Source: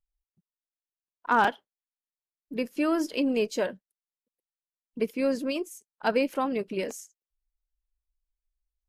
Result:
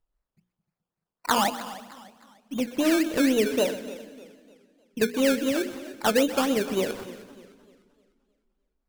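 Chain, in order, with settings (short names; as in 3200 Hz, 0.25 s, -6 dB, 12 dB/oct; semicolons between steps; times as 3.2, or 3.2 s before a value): notches 60/120/180/240/300/360/420/480 Hz; treble ducked by the level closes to 720 Hz, closed at -22.5 dBFS; in parallel at -11 dB: hard clip -28.5 dBFS, distortion -8 dB; 1.38–2.67 on the sum: fixed phaser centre 420 Hz, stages 6; decimation with a swept rate 18×, swing 60% 3.8 Hz; on a send: split-band echo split 330 Hz, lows 0.213 s, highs 0.126 s, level -14.5 dB; on the sum: warbling echo 0.303 s, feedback 38%, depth 115 cents, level -17 dB; gain +3.5 dB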